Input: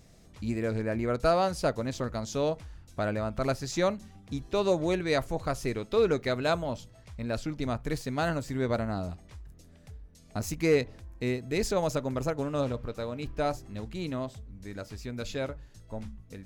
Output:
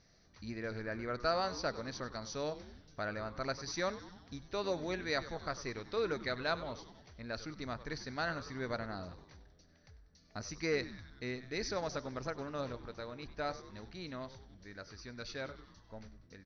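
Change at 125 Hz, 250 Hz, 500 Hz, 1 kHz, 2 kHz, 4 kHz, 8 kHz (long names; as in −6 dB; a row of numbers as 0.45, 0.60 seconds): −12.5, −11.0, −10.0, −7.0, −3.5, −3.5, −6.5 decibels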